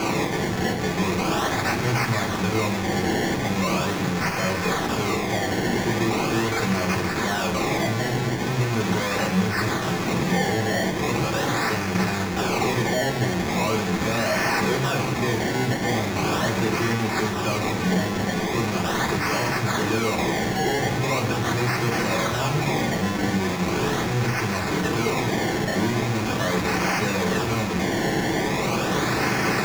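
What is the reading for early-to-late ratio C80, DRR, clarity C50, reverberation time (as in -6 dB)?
13.5 dB, -1.0 dB, 10.0 dB, 0.65 s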